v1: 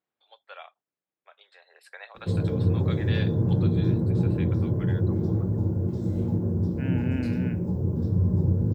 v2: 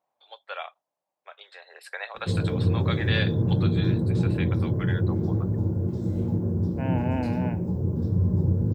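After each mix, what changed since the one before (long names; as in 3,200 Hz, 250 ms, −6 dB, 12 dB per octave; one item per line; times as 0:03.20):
first voice +8.5 dB
second voice: add flat-topped bell 760 Hz +15.5 dB 1.2 octaves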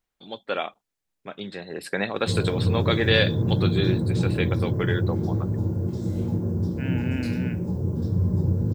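first voice: remove Bessel high-pass filter 1,000 Hz, order 8
second voice: add flat-topped bell 760 Hz −15.5 dB 1.2 octaves
master: add high-shelf EQ 2,000 Hz +9.5 dB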